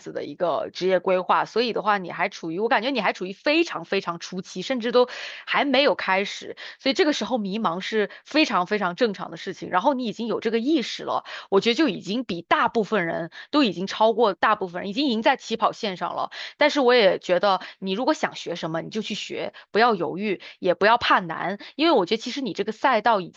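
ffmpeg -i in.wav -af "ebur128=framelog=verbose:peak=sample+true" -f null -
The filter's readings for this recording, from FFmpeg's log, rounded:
Integrated loudness:
  I:         -23.2 LUFS
  Threshold: -33.3 LUFS
Loudness range:
  LRA:         2.4 LU
  Threshold: -43.3 LUFS
  LRA low:   -24.5 LUFS
  LRA high:  -22.1 LUFS
Sample peak:
  Peak:       -4.9 dBFS
True peak:
  Peak:       -4.9 dBFS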